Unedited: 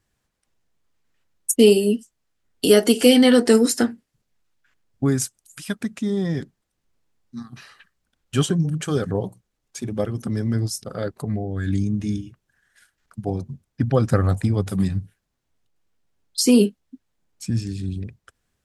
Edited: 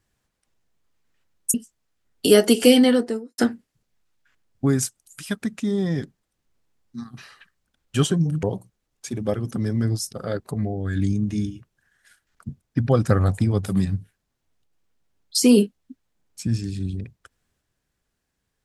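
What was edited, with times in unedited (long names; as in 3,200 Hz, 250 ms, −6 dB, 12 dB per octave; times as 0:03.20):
0:01.54–0:01.93: remove
0:03.04–0:03.77: fade out and dull
0:08.82–0:09.14: remove
0:13.20–0:13.52: remove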